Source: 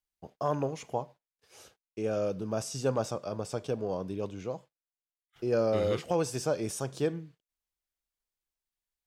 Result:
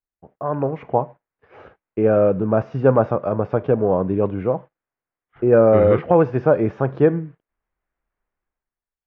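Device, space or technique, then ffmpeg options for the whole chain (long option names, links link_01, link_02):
action camera in a waterproof case: -af "lowpass=frequency=1900:width=0.5412,lowpass=frequency=1900:width=1.3066,dynaudnorm=framelen=100:gausssize=13:maxgain=16dB" -ar 16000 -c:a aac -b:a 64k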